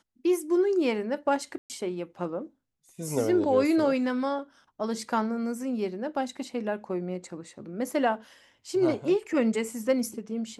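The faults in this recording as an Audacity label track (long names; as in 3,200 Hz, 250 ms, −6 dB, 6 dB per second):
1.580000	1.700000	drop-out 118 ms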